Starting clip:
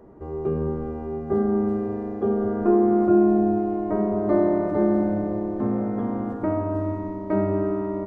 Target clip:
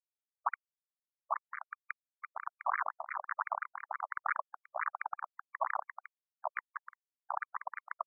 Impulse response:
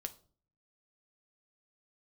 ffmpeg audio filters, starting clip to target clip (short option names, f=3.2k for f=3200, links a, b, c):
-filter_complex "[0:a]highpass=240,bandreject=f=60:t=h:w=6,bandreject=f=120:t=h:w=6,bandreject=f=180:t=h:w=6,bandreject=f=240:t=h:w=6,bandreject=f=300:t=h:w=6,bandreject=f=360:t=h:w=6,bandreject=f=420:t=h:w=6,bandreject=f=480:t=h:w=6,bandreject=f=540:t=h:w=6,bandreject=f=600:t=h:w=6,afftfilt=real='re*gte(hypot(re,im),0.0794)':imag='im*gte(hypot(re,im),0.0794)':win_size=1024:overlap=0.75,equalizer=f=840:w=3:g=-10,acompressor=threshold=-27dB:ratio=10,aeval=exprs='sgn(val(0))*max(abs(val(0))-0.00266,0)':c=same,afftfilt=real='hypot(re,im)*cos(2*PI*random(0))':imag='hypot(re,im)*sin(2*PI*random(1))':win_size=512:overlap=0.75,acrusher=bits=4:mix=0:aa=0.000001,acrossover=split=620[a][b];[a]aeval=exprs='val(0)*(1-0.7/2+0.7/2*cos(2*PI*1.3*n/s))':c=same[c];[b]aeval=exprs='val(0)*(1-0.7/2-0.7/2*cos(2*PI*1.3*n/s))':c=same[d];[c][d]amix=inputs=2:normalize=0,asoftclip=type=hard:threshold=-25.5dB,aresample=16000,aresample=44100,afftfilt=real='re*between(b*sr/1024,820*pow(1700/820,0.5+0.5*sin(2*PI*5.8*pts/sr))/1.41,820*pow(1700/820,0.5+0.5*sin(2*PI*5.8*pts/sr))*1.41)':imag='im*between(b*sr/1024,820*pow(1700/820,0.5+0.5*sin(2*PI*5.8*pts/sr))/1.41,820*pow(1700/820,0.5+0.5*sin(2*PI*5.8*pts/sr))*1.41)':win_size=1024:overlap=0.75,volume=12.5dB"